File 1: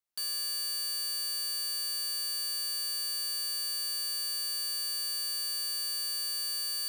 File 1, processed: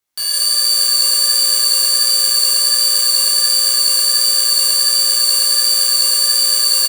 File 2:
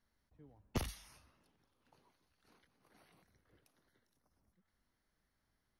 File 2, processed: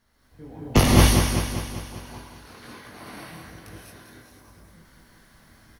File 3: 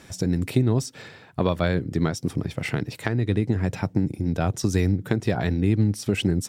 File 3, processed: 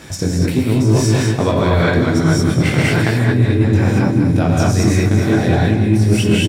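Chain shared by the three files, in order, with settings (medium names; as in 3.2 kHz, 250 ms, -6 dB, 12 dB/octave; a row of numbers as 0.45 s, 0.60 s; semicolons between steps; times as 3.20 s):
Chebyshev shaper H 6 -30 dB, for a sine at -6 dBFS; chorus 1.4 Hz, delay 18.5 ms, depth 6.2 ms; level rider gain up to 8 dB; on a send: feedback delay 198 ms, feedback 57%, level -9 dB; on the sum: gated-style reverb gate 250 ms rising, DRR -5.5 dB; reverse; compression 6:1, threshold -26 dBFS; reverse; peak normalisation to -1.5 dBFS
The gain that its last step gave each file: +15.5 dB, +16.5 dB, +14.0 dB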